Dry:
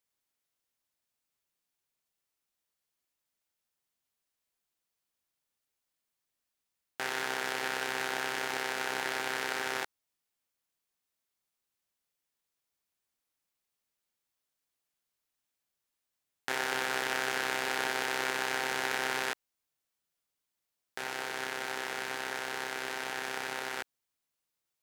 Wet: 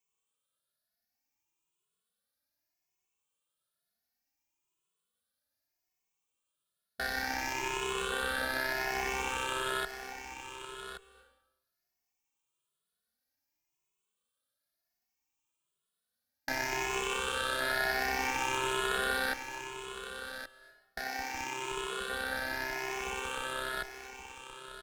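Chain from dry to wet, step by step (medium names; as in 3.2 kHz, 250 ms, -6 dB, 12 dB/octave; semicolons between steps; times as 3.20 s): drifting ripple filter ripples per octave 0.7, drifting +0.65 Hz, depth 14 dB; band-stop 2 kHz, Q 12; in parallel at -9.5 dB: Schmitt trigger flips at -24 dBFS; on the sum: delay 1123 ms -9.5 dB; on a send at -16 dB: reverberation RT60 0.95 s, pre-delay 223 ms; on the sum: endless flanger 2.3 ms +1 Hz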